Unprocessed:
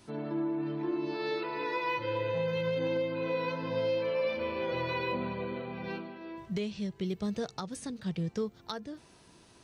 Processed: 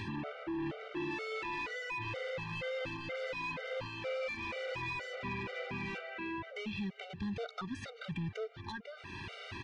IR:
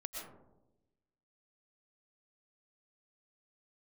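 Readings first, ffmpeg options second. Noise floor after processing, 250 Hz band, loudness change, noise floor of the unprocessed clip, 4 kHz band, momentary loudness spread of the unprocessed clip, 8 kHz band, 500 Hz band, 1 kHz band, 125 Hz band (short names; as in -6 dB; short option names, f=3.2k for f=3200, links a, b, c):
-52 dBFS, -6.5 dB, -6.0 dB, -59 dBFS, -2.5 dB, 8 LU, n/a, -9.0 dB, -5.0 dB, -5.0 dB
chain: -af "equalizer=f=2.3k:t=o:w=1.7:g=13.5,acompressor=mode=upward:threshold=-41dB:ratio=2.5,alimiter=limit=-22dB:level=0:latency=1:release=448,equalizer=f=98:t=o:w=0.5:g=12.5,asoftclip=type=hard:threshold=-35dB,lowpass=3.4k,aecho=1:1:289:0.075,acompressor=threshold=-43dB:ratio=6,afftfilt=real='re*gt(sin(2*PI*2.1*pts/sr)*(1-2*mod(floor(b*sr/1024/390),2)),0)':imag='im*gt(sin(2*PI*2.1*pts/sr)*(1-2*mod(floor(b*sr/1024/390),2)),0)':win_size=1024:overlap=0.75,volume=7.5dB"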